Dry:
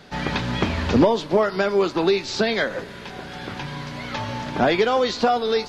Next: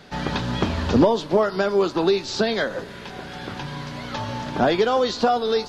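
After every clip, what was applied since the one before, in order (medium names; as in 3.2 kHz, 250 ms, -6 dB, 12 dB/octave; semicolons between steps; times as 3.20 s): dynamic bell 2.2 kHz, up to -7 dB, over -43 dBFS, Q 2.6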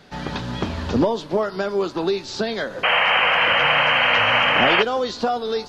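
painted sound noise, 2.83–4.83 s, 460–3200 Hz -15 dBFS; trim -2.5 dB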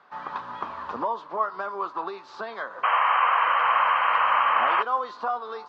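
in parallel at -2.5 dB: peak limiter -11.5 dBFS, peak gain reduction 7 dB; on the sum: band-pass filter 1.1 kHz, Q 5.2; trim +2 dB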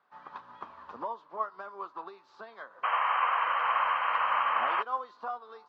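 upward expansion 1.5:1, over -38 dBFS; trim -5.5 dB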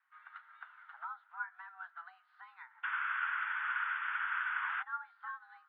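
mistuned SSB +360 Hz 460–3200 Hz; low-pass that closes with the level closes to 2.3 kHz, closed at -28.5 dBFS; trim -7.5 dB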